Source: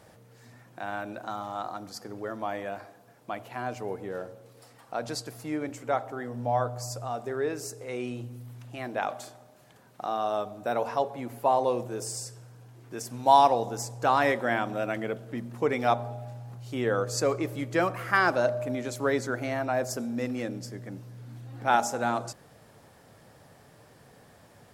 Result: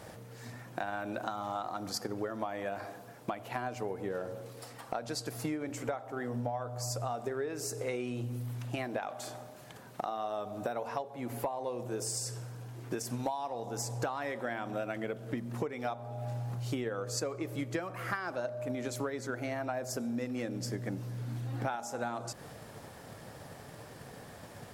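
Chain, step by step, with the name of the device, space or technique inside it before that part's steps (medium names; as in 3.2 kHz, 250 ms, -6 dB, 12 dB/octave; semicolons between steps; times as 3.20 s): drum-bus smash (transient shaper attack +7 dB, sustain +2 dB; compression 16:1, threshold -37 dBFS, peak gain reduction 28 dB; saturation -25 dBFS, distortion -26 dB); trim +5.5 dB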